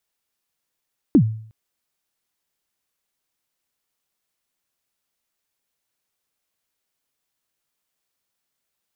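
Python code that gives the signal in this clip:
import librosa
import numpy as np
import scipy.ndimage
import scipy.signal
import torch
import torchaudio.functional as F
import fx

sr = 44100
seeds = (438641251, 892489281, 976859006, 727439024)

y = fx.drum_kick(sr, seeds[0], length_s=0.36, level_db=-6.5, start_hz=340.0, end_hz=110.0, sweep_ms=78.0, decay_s=0.55, click=False)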